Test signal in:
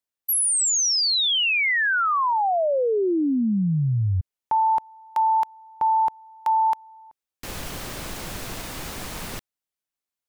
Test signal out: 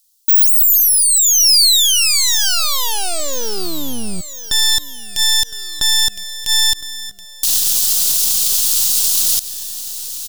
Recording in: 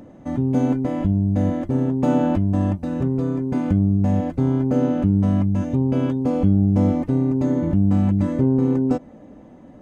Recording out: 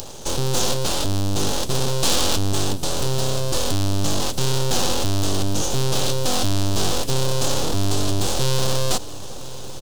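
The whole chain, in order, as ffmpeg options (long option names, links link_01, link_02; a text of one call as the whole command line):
ffmpeg -i in.wav -filter_complex "[0:a]aeval=exprs='(tanh(7.08*val(0)+0.15)-tanh(0.15))/7.08':channel_layout=same,asplit=2[link_01][link_02];[link_02]acompressor=threshold=-36dB:ratio=6:release=33,volume=2dB[link_03];[link_01][link_03]amix=inputs=2:normalize=0,aeval=exprs='abs(val(0))':channel_layout=same,asplit=2[link_04][link_05];[link_05]aecho=0:1:1013|2026|3039|4052:0.112|0.0539|0.0259|0.0124[link_06];[link_04][link_06]amix=inputs=2:normalize=0,aexciter=amount=9.7:drive=8.5:freq=3200,alimiter=level_in=5dB:limit=-1dB:release=50:level=0:latency=1,volume=-4dB" out.wav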